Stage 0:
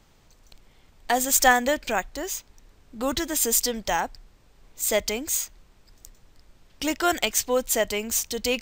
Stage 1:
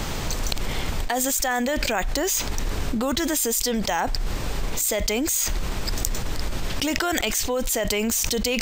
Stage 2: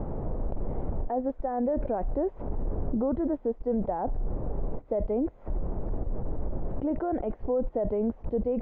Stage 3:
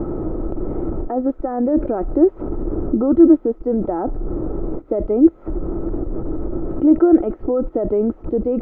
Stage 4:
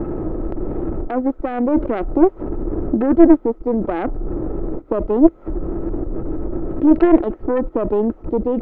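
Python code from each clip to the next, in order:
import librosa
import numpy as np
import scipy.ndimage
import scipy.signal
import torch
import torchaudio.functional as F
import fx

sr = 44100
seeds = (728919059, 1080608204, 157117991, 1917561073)

y1 = fx.env_flatten(x, sr, amount_pct=100)
y1 = y1 * 10.0 ** (-9.5 / 20.0)
y2 = fx.ladder_lowpass(y1, sr, hz=820.0, resonance_pct=25)
y2 = y2 * 10.0 ** (2.5 / 20.0)
y3 = fx.small_body(y2, sr, hz=(330.0, 1300.0), ring_ms=50, db=17)
y3 = y3 * 10.0 ** (4.5 / 20.0)
y4 = fx.tracing_dist(y3, sr, depth_ms=0.35)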